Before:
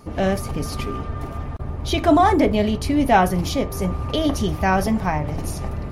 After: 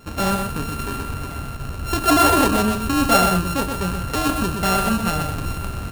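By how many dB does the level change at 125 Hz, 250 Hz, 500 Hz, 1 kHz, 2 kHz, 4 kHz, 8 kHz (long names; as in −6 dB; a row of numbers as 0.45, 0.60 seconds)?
−1.0, −0.5, −2.5, +0.5, +2.5, +4.0, +8.0 decibels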